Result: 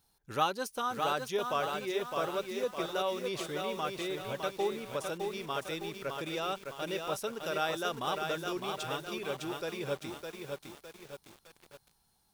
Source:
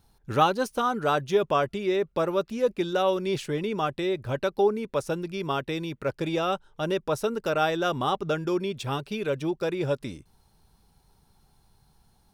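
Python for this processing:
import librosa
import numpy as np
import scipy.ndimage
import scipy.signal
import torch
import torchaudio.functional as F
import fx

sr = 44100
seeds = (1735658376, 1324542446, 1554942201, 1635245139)

y = fx.tilt_eq(x, sr, slope=2.0)
y = fx.echo_crushed(y, sr, ms=609, feedback_pct=55, bits=7, wet_db=-4.0)
y = F.gain(torch.from_numpy(y), -8.0).numpy()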